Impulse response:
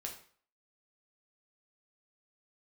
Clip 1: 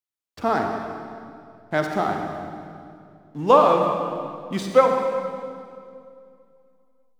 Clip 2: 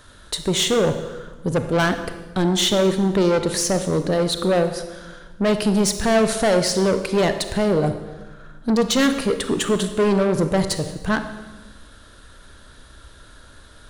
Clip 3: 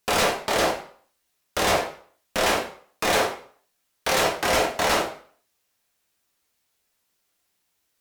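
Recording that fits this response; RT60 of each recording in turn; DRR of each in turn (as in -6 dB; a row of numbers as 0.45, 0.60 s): 3; 2.4, 1.2, 0.50 s; 2.5, 8.0, 0.0 dB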